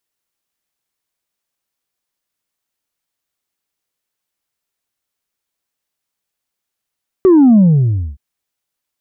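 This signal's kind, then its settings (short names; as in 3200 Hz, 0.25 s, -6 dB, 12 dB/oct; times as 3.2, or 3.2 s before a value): sub drop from 390 Hz, over 0.92 s, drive 1.5 dB, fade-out 0.59 s, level -5 dB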